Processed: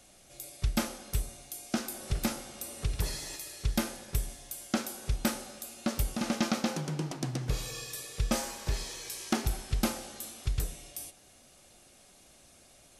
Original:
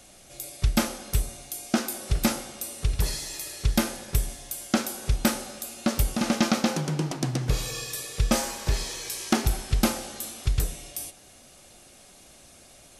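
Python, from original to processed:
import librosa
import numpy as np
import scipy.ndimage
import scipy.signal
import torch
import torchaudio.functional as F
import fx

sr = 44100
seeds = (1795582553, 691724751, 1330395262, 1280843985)

y = fx.band_squash(x, sr, depth_pct=40, at=(1.72, 3.36))
y = y * 10.0 ** (-6.5 / 20.0)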